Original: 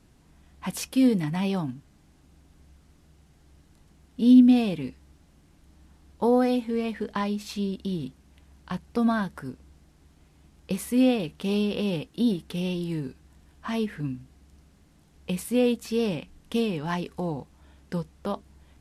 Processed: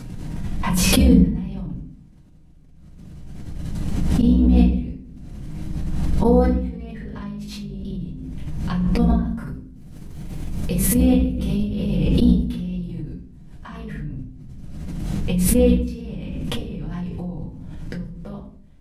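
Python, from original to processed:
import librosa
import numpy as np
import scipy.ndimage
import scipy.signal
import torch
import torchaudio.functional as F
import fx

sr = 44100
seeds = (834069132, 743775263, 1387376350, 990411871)

y = fx.octave_divider(x, sr, octaves=2, level_db=2.0)
y = fx.high_shelf(y, sr, hz=11000.0, db=11.5, at=(9.46, 11.95))
y = fx.level_steps(y, sr, step_db=20)
y = fx.peak_eq(y, sr, hz=170.0, db=8.5, octaves=1.8)
y = fx.room_shoebox(y, sr, seeds[0], volume_m3=63.0, walls='mixed', distance_m=1.8)
y = fx.pre_swell(y, sr, db_per_s=21.0)
y = F.gain(torch.from_numpy(y), -7.5).numpy()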